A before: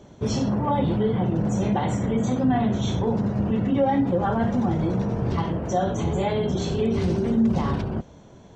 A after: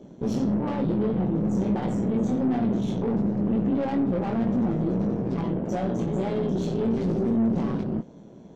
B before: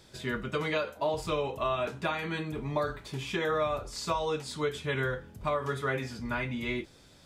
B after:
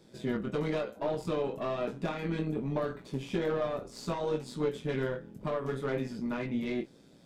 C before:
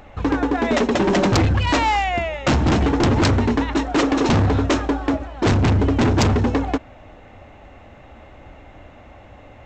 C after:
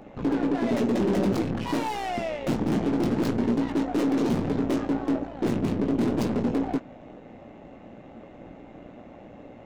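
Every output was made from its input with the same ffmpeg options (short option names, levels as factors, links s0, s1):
-filter_complex "[0:a]aeval=exprs='(tanh(22.4*val(0)+0.6)-tanh(0.6))/22.4':c=same,lowshelf=f=120:t=q:w=1.5:g=-13.5,acrossover=split=630[s0][s1];[s0]acontrast=81[s2];[s1]flanger=delay=18:depth=3.4:speed=1.1[s3];[s2][s3]amix=inputs=2:normalize=0,tremolo=f=120:d=0.462"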